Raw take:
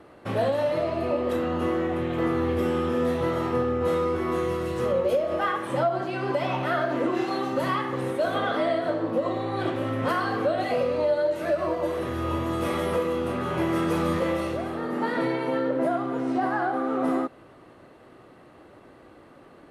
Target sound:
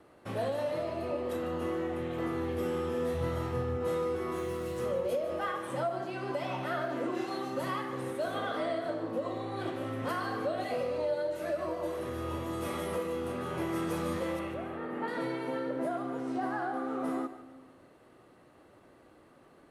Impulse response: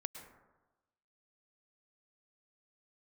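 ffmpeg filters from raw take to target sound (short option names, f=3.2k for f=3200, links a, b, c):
-filter_complex "[0:a]acrossover=split=650|5600[a][b][c];[c]acontrast=55[d];[a][b][d]amix=inputs=3:normalize=0,asplit=3[e][f][g];[e]afade=t=out:st=3.13:d=0.02[h];[f]asubboost=boost=4.5:cutoff=140,afade=t=in:st=3.13:d=0.02,afade=t=out:st=3.76:d=0.02[i];[g]afade=t=in:st=3.76:d=0.02[j];[h][i][j]amix=inputs=3:normalize=0,asettb=1/sr,asplit=3[k][l][m];[k]atrim=end=4.364[n];[l]atrim=start=4.36:end=4.83,asetpts=PTS-STARTPTS,afade=t=in:d=0.004:c=qsin,afade=t=out:st=0.466:d=0.004:c=qsin,acrusher=bits=8:mode=log:mix=0:aa=0.000001[o];[m]atrim=start=4.826[p];[n][o]acrossfade=d=0.004:c1=hsin:c2=qsin[q];[q][p]acrossfade=d=0.004:c1=qsin:c2=hsin,asettb=1/sr,asplit=3[r][s][t];[r]atrim=end=14.394[u];[s]atrim=start=14.39:end=15.08,asetpts=PTS-STARTPTS,afade=t=in:d=0.004:c=qsin,afade=t=out:st=0.686:d=0.004:c=qsin,highshelf=f=3.6k:t=q:w=1.5:g=-10.5[v];[t]atrim=start=15.076[w];[u][v]acrossfade=d=0.004:c1=hsin:c2=qsin[x];[x][w]acrossfade=d=0.004:c1=qsin:c2=hsin,asplit=2[y][z];[1:a]atrim=start_sample=2205,adelay=148[aa];[z][aa]afir=irnorm=-1:irlink=0,volume=-10dB[ab];[y][ab]amix=inputs=2:normalize=0,volume=-8.5dB"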